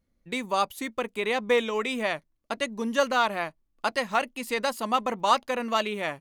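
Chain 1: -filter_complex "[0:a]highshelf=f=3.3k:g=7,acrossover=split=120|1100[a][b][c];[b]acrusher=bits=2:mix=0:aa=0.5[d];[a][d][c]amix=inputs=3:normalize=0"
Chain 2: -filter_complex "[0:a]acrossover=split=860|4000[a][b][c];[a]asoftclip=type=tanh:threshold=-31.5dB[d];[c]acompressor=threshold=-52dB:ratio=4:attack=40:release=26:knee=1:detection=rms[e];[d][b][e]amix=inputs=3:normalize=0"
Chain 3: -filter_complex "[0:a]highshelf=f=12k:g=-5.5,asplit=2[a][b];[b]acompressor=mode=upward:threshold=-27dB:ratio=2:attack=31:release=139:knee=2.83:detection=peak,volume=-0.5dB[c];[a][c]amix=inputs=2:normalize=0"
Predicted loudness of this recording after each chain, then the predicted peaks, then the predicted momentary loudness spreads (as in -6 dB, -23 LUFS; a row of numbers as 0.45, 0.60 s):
-29.5, -30.0, -21.5 LUFS; -7.0, -12.5, -3.0 dBFS; 8, 8, 8 LU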